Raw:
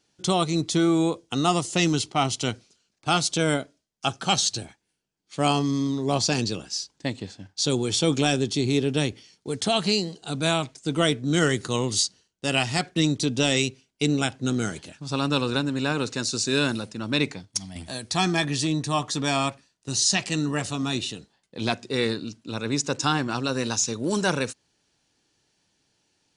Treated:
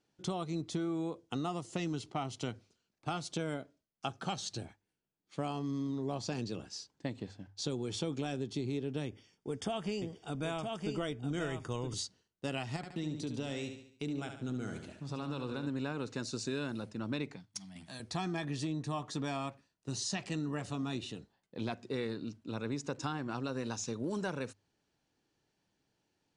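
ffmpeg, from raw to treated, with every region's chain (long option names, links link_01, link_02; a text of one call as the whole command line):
ffmpeg -i in.wav -filter_complex "[0:a]asettb=1/sr,asplit=3[link_01][link_02][link_03];[link_01]atrim=end=9.054[link_04];[link_02]atrim=start=9.05:end=11.94,asetpts=PTS-STARTPTS,afade=type=in:duration=0.004:curve=qsin,afade=type=out:start_time=2.886:duration=0.004:curve=qsin,asuperstop=centerf=4100:order=12:qfactor=5.7,asubboost=boost=9.5:cutoff=66,aecho=1:1:965:0.501,atrim=end_sample=127449[link_05];[link_03]atrim=start=11.936[link_06];[link_04][link_05]acrossfade=duration=0.004:curve1=hsin:curve2=qsin[link_07];[link_07][link_06]acrossfade=duration=0.004:curve1=qsin:curve2=hsin,asettb=1/sr,asplit=3[link_08][link_09][link_10];[link_08]atrim=end=12.764[link_11];[link_09]atrim=start=12.76:end=15.67,asetpts=PTS-STARTPTS,afade=type=in:duration=0.004:curve=qsin,afade=type=out:start_time=2.906:duration=0.004:curve=qsin,acompressor=threshold=-32dB:ratio=2:attack=3.2:release=140:knee=1:detection=peak,aecho=1:1:71|142|213|284|355:0.398|0.187|0.0879|0.0413|0.0194,atrim=end_sample=128331[link_12];[link_10]atrim=start=15.666[link_13];[link_11][link_12]acrossfade=duration=0.004:curve1=hsin:curve2=qsin[link_14];[link_14][link_13]acrossfade=duration=0.004:curve1=qsin:curve2=hsin,asettb=1/sr,asplit=3[link_15][link_16][link_17];[link_15]atrim=end=17.364[link_18];[link_16]atrim=start=17.36:end=18,asetpts=PTS-STARTPTS,afade=type=in:duration=0.004:curve=qsin,afade=type=out:start_time=0.636:duration=0.004:curve=qsin,highpass=frequency=130:width=0.5412,highpass=frequency=130:width=1.3066,equalizer=frequency=440:width_type=o:width=1.7:gain=-12.5[link_19];[link_17]atrim=start=17.996[link_20];[link_18][link_19]acrossfade=duration=0.004:curve1=hsin:curve2=qsin[link_21];[link_21][link_20]acrossfade=duration=0.004:curve1=qsin:curve2=hsin,highshelf=frequency=2700:gain=-11.5,acompressor=threshold=-27dB:ratio=6,bandreject=frequency=50:width_type=h:width=6,bandreject=frequency=100:width_type=h:width=6,volume=-5.5dB" out.wav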